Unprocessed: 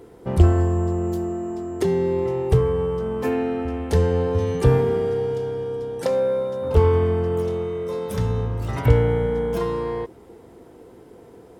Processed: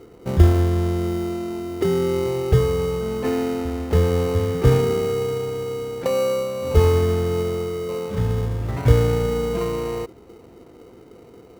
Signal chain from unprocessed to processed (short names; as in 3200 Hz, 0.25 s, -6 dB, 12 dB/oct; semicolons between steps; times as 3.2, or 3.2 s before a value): LPF 2600 Hz; in parallel at -5.5 dB: sample-rate reducer 1700 Hz, jitter 0%; on the sum: gain -2.5 dB